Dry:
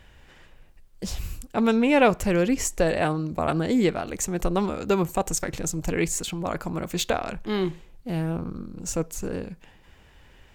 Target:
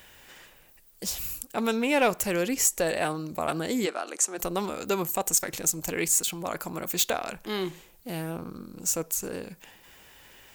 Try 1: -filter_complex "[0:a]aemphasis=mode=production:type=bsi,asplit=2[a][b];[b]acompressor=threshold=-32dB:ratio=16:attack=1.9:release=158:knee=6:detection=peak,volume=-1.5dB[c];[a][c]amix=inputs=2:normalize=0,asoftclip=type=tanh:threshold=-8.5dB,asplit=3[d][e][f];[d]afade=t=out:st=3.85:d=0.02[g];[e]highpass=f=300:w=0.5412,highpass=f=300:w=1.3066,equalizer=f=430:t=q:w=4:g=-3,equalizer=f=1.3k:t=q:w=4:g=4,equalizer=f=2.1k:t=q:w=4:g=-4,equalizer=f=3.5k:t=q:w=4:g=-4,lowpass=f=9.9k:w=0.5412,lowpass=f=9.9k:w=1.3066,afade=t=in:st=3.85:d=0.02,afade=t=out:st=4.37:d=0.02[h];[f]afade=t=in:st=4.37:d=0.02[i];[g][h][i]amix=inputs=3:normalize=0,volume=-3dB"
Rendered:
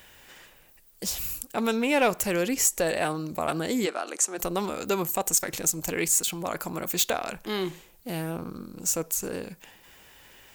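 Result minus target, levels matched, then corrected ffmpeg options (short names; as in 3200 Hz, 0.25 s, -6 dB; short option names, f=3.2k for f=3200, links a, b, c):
compressor: peak gain reduction -8 dB
-filter_complex "[0:a]aemphasis=mode=production:type=bsi,asplit=2[a][b];[b]acompressor=threshold=-40.5dB:ratio=16:attack=1.9:release=158:knee=6:detection=peak,volume=-1.5dB[c];[a][c]amix=inputs=2:normalize=0,asoftclip=type=tanh:threshold=-8.5dB,asplit=3[d][e][f];[d]afade=t=out:st=3.85:d=0.02[g];[e]highpass=f=300:w=0.5412,highpass=f=300:w=1.3066,equalizer=f=430:t=q:w=4:g=-3,equalizer=f=1.3k:t=q:w=4:g=4,equalizer=f=2.1k:t=q:w=4:g=-4,equalizer=f=3.5k:t=q:w=4:g=-4,lowpass=f=9.9k:w=0.5412,lowpass=f=9.9k:w=1.3066,afade=t=in:st=3.85:d=0.02,afade=t=out:st=4.37:d=0.02[h];[f]afade=t=in:st=4.37:d=0.02[i];[g][h][i]amix=inputs=3:normalize=0,volume=-3dB"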